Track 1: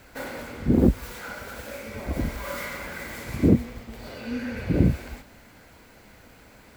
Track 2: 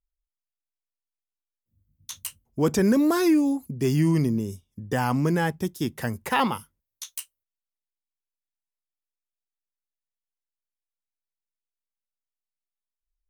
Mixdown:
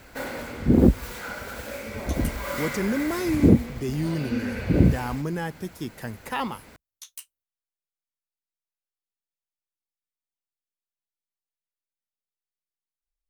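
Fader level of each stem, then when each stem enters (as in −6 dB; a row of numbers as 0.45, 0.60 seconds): +2.0, −6.0 decibels; 0.00, 0.00 seconds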